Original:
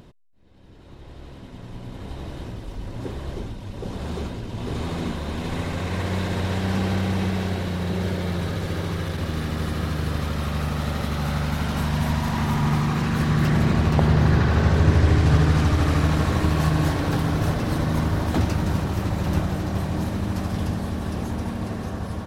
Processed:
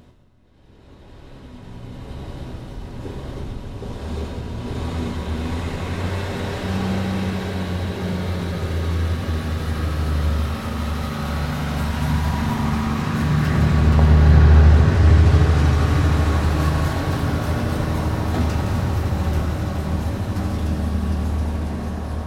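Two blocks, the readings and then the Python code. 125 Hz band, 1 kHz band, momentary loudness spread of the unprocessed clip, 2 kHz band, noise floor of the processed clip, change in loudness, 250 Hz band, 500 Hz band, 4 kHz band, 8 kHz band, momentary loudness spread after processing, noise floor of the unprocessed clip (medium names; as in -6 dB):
+3.5 dB, +1.5 dB, 15 LU, +1.0 dB, -43 dBFS, +3.0 dB, +0.5 dB, +1.0 dB, +0.5 dB, +0.5 dB, 18 LU, -42 dBFS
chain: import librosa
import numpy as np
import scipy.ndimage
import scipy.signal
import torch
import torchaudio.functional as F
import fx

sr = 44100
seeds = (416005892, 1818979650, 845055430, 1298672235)

y = fx.rev_fdn(x, sr, rt60_s=3.8, lf_ratio=1.0, hf_ratio=0.7, size_ms=73.0, drr_db=0.0)
y = y * librosa.db_to_amplitude(-2.0)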